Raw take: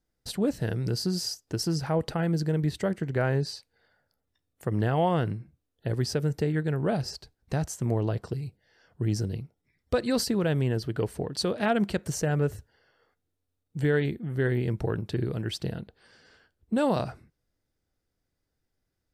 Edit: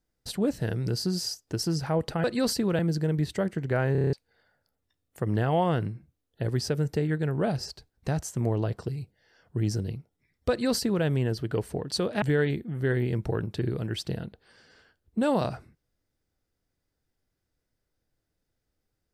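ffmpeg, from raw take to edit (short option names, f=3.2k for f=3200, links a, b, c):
-filter_complex "[0:a]asplit=11[a][b][c][d][e][f][g][h][i][j][k];[a]atrim=end=2.242[l];[b]atrim=start=9.948:end=10.502[m];[c]atrim=start=2.238:end=3.402[n];[d]atrim=start=3.368:end=3.402[o];[e]atrim=start=3.368:end=3.402[p];[f]atrim=start=3.368:end=3.402[q];[g]atrim=start=3.368:end=3.402[r];[h]atrim=start=3.368:end=3.402[s];[i]atrim=start=3.368:end=3.402[t];[j]atrim=start=3.578:end=11.672[u];[k]atrim=start=13.768[v];[l][m]acrossfade=d=0.004:c1=hsin:c2=hsin[w];[w][n]acrossfade=d=0.004:c1=hsin:c2=hsin[x];[x][o]acrossfade=d=0.004:c1=hsin:c2=hsin[y];[y][p]acrossfade=d=0.004:c1=hsin:c2=hsin[z];[z][q]acrossfade=d=0.004:c1=hsin:c2=hsin[aa];[aa][r]acrossfade=d=0.004:c1=hsin:c2=hsin[ab];[ab][s]acrossfade=d=0.004:c1=hsin:c2=hsin[ac];[ac][t]acrossfade=d=0.004:c1=hsin:c2=hsin[ad];[ad][u]acrossfade=d=0.004:c1=hsin:c2=hsin[ae];[ae][v]acrossfade=d=0.004:c1=hsin:c2=hsin"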